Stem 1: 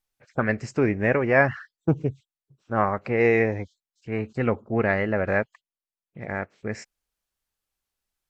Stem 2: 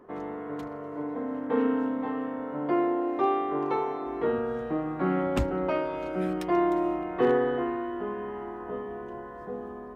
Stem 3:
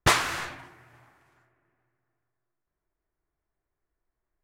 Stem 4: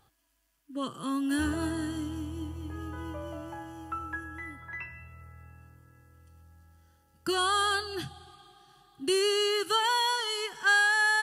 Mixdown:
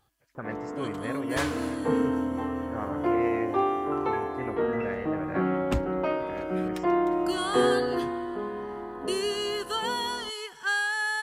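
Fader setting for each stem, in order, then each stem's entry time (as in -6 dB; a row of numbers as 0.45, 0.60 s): -14.0, 0.0, -12.0, -4.0 dB; 0.00, 0.35, 1.30, 0.00 s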